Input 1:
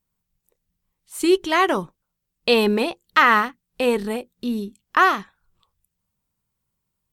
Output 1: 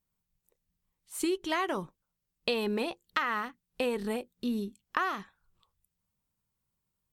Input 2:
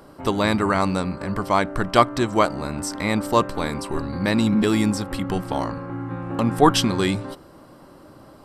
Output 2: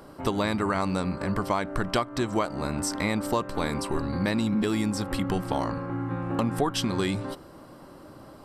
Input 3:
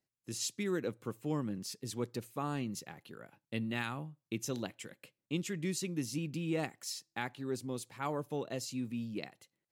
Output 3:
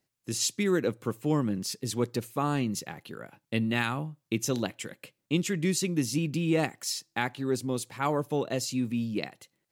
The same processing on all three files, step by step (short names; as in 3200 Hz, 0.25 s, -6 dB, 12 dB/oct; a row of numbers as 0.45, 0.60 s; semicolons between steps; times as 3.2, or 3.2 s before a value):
compressor 12:1, threshold -21 dBFS; normalise peaks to -12 dBFS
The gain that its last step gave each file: -5.5, -0.5, +8.5 dB